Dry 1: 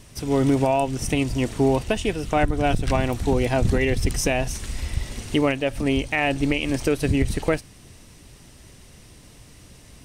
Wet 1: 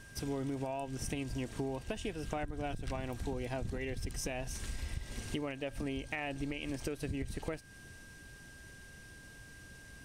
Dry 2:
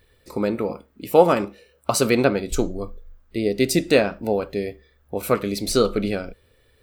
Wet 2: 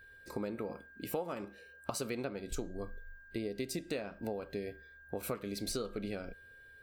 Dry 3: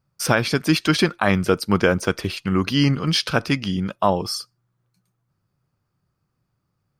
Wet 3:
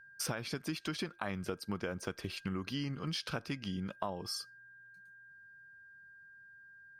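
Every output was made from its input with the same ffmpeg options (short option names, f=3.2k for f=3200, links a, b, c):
-af "aeval=exprs='val(0)+0.00447*sin(2*PI*1600*n/s)':c=same,acompressor=threshold=-27dB:ratio=8,volume=-7.5dB"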